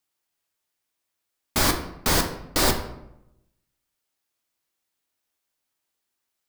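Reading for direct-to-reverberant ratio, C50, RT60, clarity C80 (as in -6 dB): 4.0 dB, 9.0 dB, 0.85 s, 11.5 dB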